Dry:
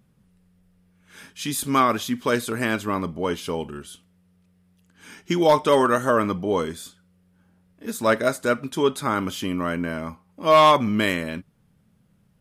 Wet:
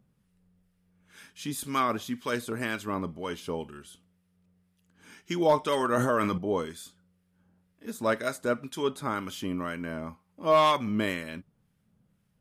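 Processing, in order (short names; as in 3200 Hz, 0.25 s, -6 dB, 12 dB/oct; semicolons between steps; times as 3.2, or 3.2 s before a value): harmonic tremolo 2 Hz, depth 50%, crossover 1200 Hz; 5.91–6.38 sustainer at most 21 dB/s; gain -5 dB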